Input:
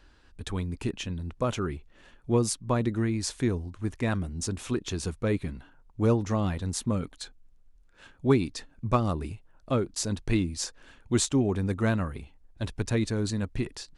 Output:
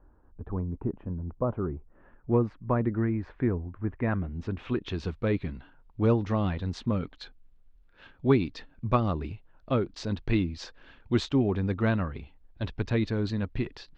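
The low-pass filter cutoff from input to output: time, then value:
low-pass filter 24 dB per octave
0:01.70 1,100 Hz
0:02.32 1,900 Hz
0:03.93 1,900 Hz
0:05.07 4,100 Hz

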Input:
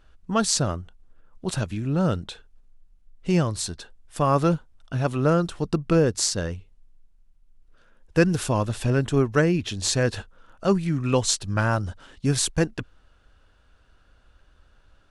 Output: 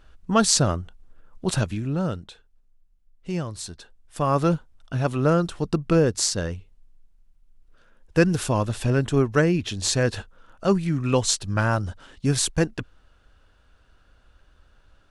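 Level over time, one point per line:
0:01.60 +3.5 dB
0:02.27 −7 dB
0:03.44 −7 dB
0:04.55 +0.5 dB

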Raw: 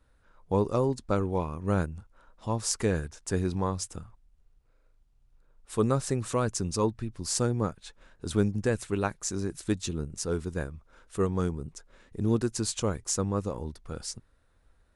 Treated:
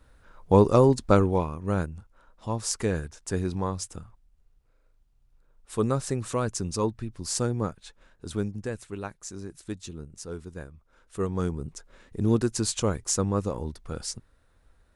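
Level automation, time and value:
0:01.16 +8 dB
0:01.60 0 dB
0:07.76 0 dB
0:08.86 −7 dB
0:10.75 −7 dB
0:11.65 +3 dB

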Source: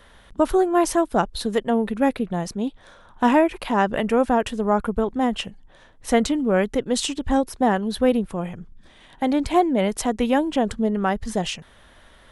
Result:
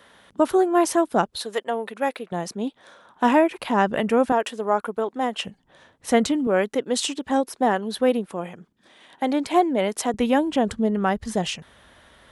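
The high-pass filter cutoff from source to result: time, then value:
160 Hz
from 0:01.37 520 Hz
from 0:02.32 220 Hz
from 0:03.59 98 Hz
from 0:04.32 370 Hz
from 0:05.45 100 Hz
from 0:06.47 260 Hz
from 0:10.14 64 Hz

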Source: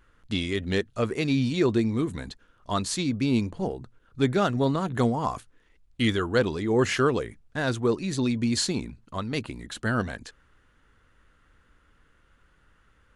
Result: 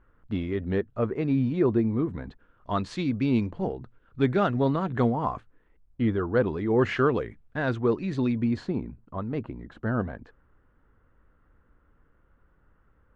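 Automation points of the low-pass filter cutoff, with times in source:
0:02.11 1,300 Hz
0:02.94 2,600 Hz
0:04.88 2,600 Hz
0:06.10 1,000 Hz
0:06.81 2,300 Hz
0:08.24 2,300 Hz
0:08.69 1,100 Hz

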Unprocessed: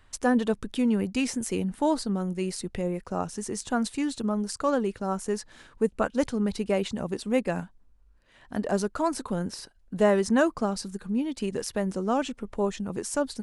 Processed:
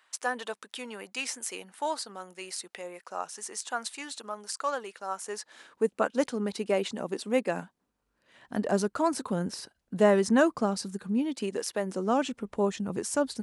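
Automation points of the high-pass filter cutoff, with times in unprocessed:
0:05.16 810 Hz
0:05.87 270 Hz
0:07.48 270 Hz
0:08.61 120 Hz
0:11.15 120 Hz
0:11.69 390 Hz
0:12.38 94 Hz

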